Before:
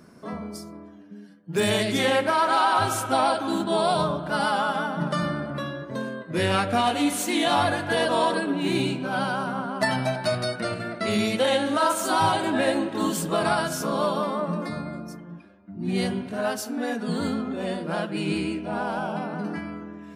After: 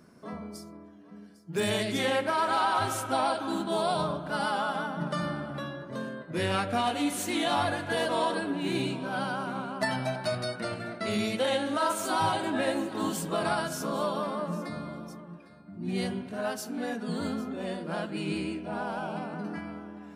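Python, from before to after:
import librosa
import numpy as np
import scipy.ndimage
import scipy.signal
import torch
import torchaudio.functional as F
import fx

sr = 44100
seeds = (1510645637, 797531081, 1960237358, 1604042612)

y = x + 10.0 ** (-17.5 / 20.0) * np.pad(x, (int(803 * sr / 1000.0), 0))[:len(x)]
y = y * librosa.db_to_amplitude(-5.5)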